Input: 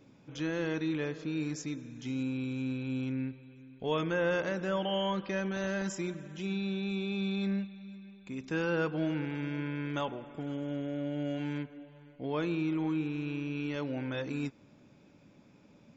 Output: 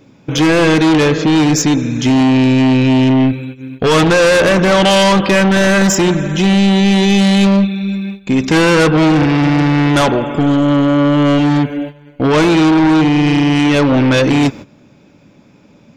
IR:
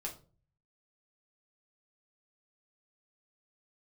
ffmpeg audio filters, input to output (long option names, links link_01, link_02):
-af "agate=range=-15dB:threshold=-51dB:ratio=16:detection=peak,apsyclip=25.5dB,aeval=exprs='1.06*(cos(1*acos(clip(val(0)/1.06,-1,1)))-cos(1*PI/2))+0.119*(cos(2*acos(clip(val(0)/1.06,-1,1)))-cos(2*PI/2))+0.299*(cos(5*acos(clip(val(0)/1.06,-1,1)))-cos(5*PI/2))+0.0473*(cos(8*acos(clip(val(0)/1.06,-1,1)))-cos(8*PI/2))':channel_layout=same,volume=-4.5dB"